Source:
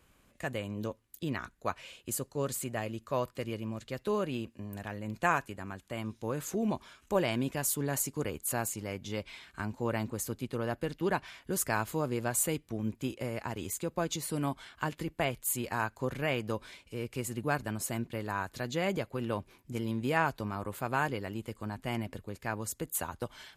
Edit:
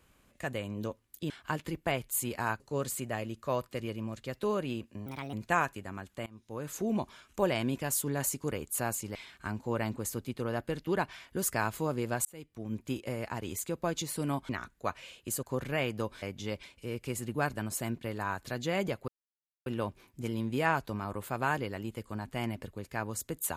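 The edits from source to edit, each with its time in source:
1.30–2.24 s: swap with 14.63–15.93 s
4.70–5.06 s: speed 133%
5.99–6.57 s: fade in, from -22 dB
8.88–9.29 s: move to 16.72 s
12.39–13.03 s: fade in
19.17 s: insert silence 0.58 s

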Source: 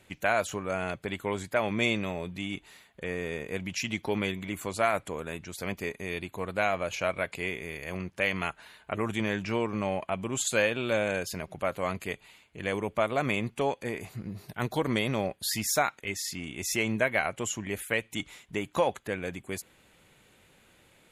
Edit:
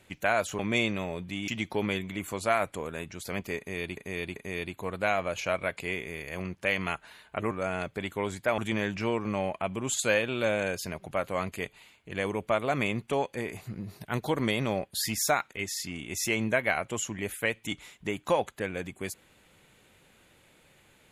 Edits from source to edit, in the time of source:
0.59–1.66 s: move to 9.06 s
2.55–3.81 s: delete
5.91–6.30 s: loop, 3 plays

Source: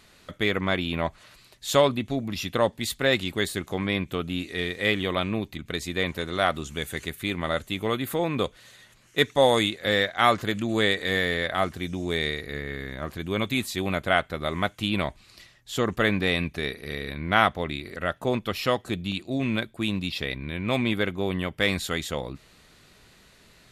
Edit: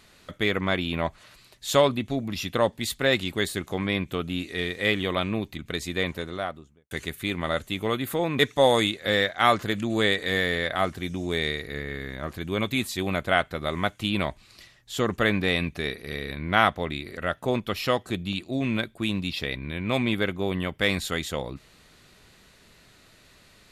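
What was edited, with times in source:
5.96–6.91 s: studio fade out
8.39–9.18 s: delete

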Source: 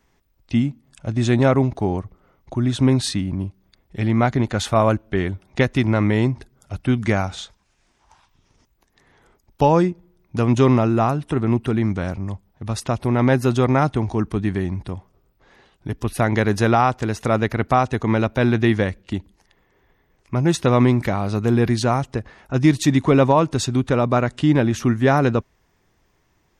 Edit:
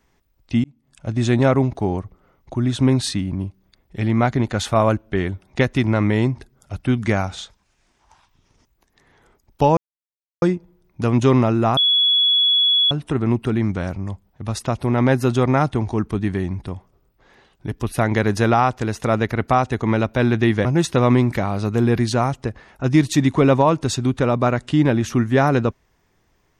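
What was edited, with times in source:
0.64–1.09 s: fade in
9.77 s: insert silence 0.65 s
11.12 s: add tone 3.38 kHz -13 dBFS 1.14 s
18.86–20.35 s: delete

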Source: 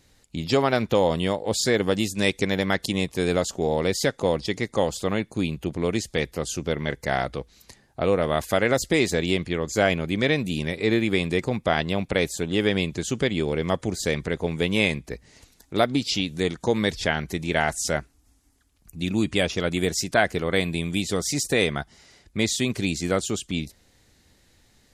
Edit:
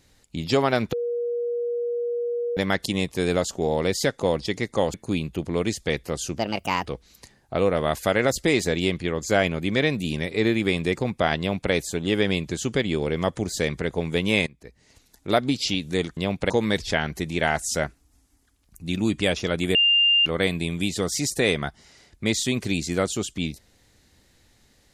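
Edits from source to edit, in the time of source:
0.93–2.57 s: bleep 477 Hz -23.5 dBFS
4.94–5.22 s: delete
6.67–7.32 s: speed 139%
11.85–12.18 s: copy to 16.63 s
14.93–15.77 s: fade in, from -21 dB
19.88–20.39 s: bleep 2.8 kHz -15 dBFS

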